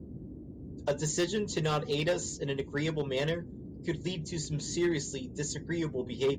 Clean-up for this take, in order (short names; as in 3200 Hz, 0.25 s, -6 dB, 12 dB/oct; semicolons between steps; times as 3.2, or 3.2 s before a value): clip repair -22.5 dBFS; noise print and reduce 30 dB